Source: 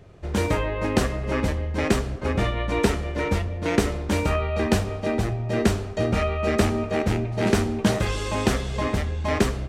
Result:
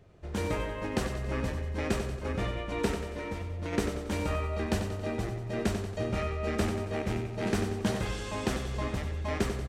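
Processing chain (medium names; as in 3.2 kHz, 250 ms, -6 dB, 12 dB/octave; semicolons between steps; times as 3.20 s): 3.01–3.73 s: compression, threshold -24 dBFS, peak gain reduction 6.5 dB; on a send: feedback delay 92 ms, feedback 52%, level -8 dB; on the sum: trim -9 dB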